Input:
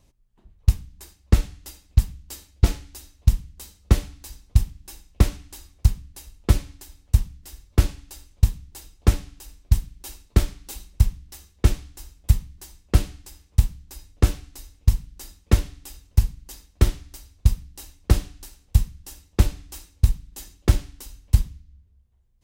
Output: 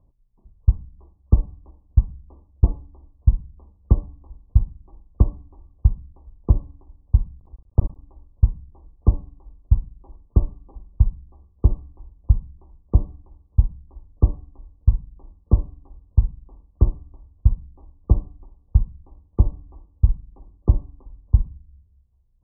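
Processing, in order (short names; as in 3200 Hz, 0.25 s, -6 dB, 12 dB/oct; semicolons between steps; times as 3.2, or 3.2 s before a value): 7.38–8.02 cycle switcher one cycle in 3, muted; brick-wall FIR low-pass 1200 Hz; low shelf 180 Hz +6.5 dB; gain -4.5 dB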